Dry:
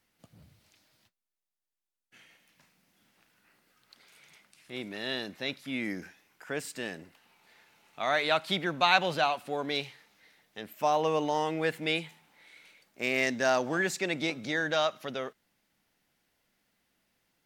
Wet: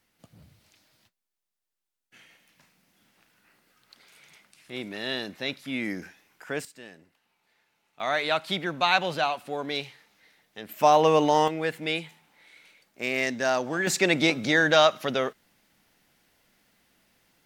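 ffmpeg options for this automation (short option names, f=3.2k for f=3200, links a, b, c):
-af "asetnsamples=n=441:p=0,asendcmd='6.65 volume volume -9dB;8 volume volume 1dB;10.69 volume volume 8dB;11.48 volume volume 1dB;13.87 volume volume 9dB',volume=3dB"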